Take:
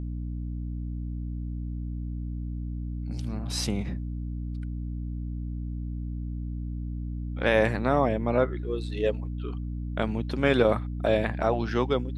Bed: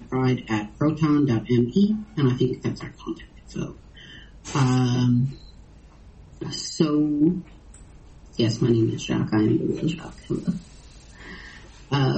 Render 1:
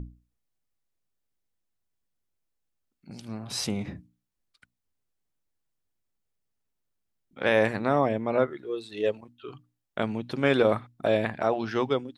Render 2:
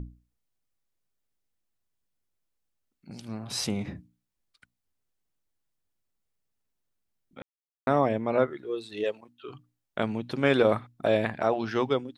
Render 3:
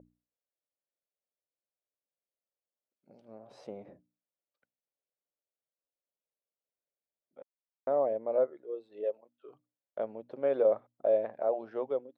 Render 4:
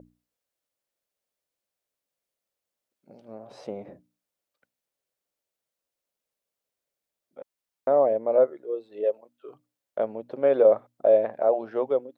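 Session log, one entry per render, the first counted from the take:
notches 60/120/180/240/300 Hz
7.42–7.87 mute; 9.03–9.49 HPF 630 Hz -> 200 Hz 6 dB/oct
band-pass 560 Hz, Q 3.9
gain +8 dB

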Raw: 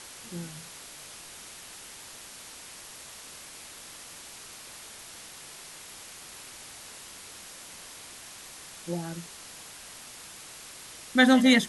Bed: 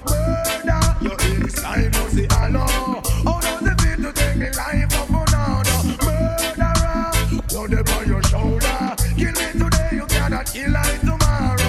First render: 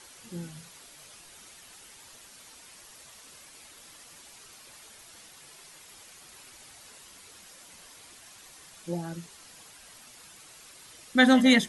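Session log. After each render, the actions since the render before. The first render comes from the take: denoiser 8 dB, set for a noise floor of -46 dBFS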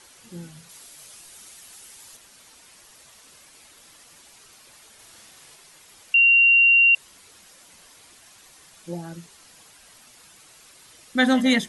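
0.69–2.17 high shelf 5200 Hz +8.5 dB; 4.95–5.56 doubler 44 ms -2.5 dB; 6.14–6.95 bleep 2760 Hz -12 dBFS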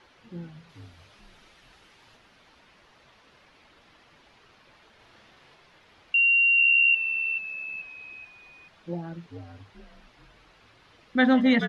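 air absorption 300 m; frequency-shifting echo 0.433 s, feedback 40%, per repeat -70 Hz, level -8.5 dB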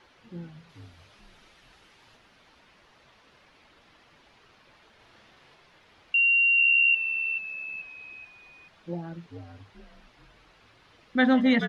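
gain -1 dB

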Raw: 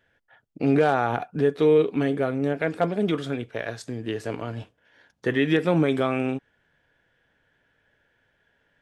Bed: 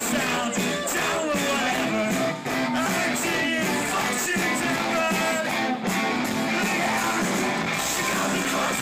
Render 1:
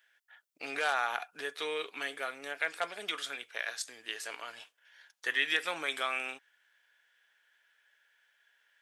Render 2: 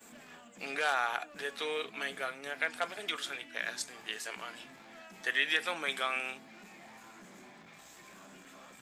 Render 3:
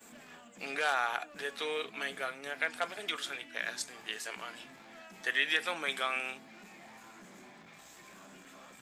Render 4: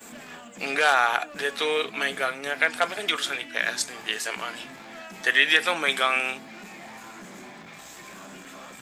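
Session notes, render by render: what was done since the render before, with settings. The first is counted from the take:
HPF 1400 Hz 12 dB/oct; high shelf 5500 Hz +8.5 dB
add bed -29.5 dB
nothing audible
gain +10.5 dB

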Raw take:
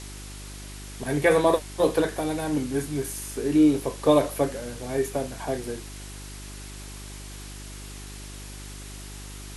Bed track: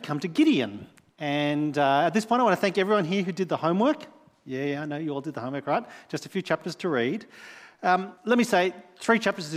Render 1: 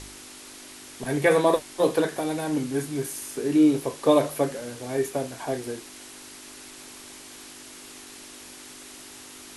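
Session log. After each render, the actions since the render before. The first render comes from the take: de-hum 50 Hz, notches 4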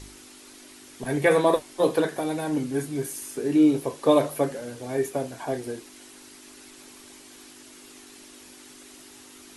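denoiser 6 dB, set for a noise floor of -45 dBFS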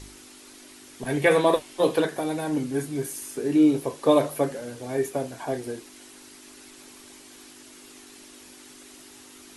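1.07–2.06 bell 2900 Hz +5 dB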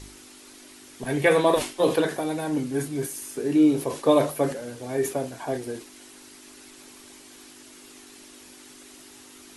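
sustainer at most 140 dB/s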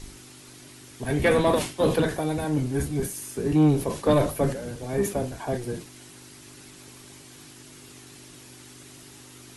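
octaver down 1 oct, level +1 dB; soft clip -12 dBFS, distortion -16 dB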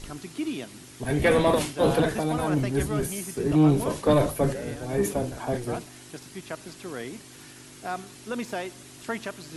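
add bed track -10.5 dB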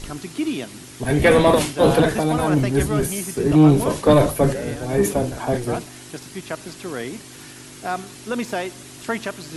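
gain +6.5 dB

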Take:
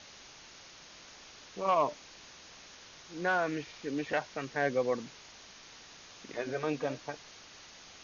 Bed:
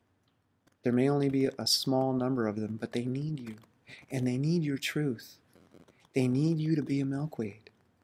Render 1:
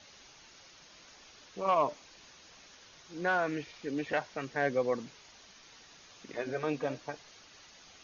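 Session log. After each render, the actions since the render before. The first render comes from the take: denoiser 6 dB, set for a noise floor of -53 dBFS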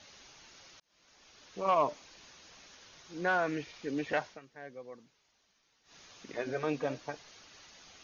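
0.8–1.59 fade in; 4.27–5.97 dip -17 dB, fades 0.13 s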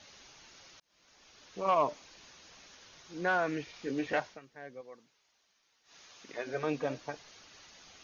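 3.71–4.2 doubler 23 ms -8 dB; 4.81–6.54 low shelf 310 Hz -9.5 dB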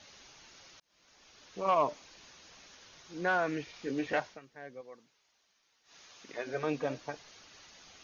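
nothing audible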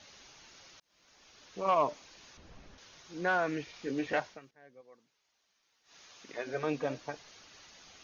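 2.37–2.78 tilt -4 dB/oct; 4.51–6.07 fade in, from -13 dB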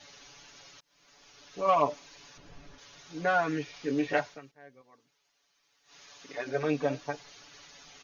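comb 7 ms, depth 97%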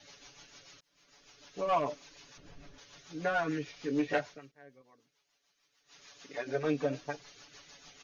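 soft clip -18 dBFS, distortion -18 dB; rotary speaker horn 6.7 Hz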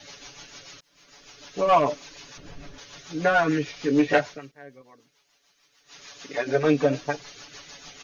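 gain +10.5 dB

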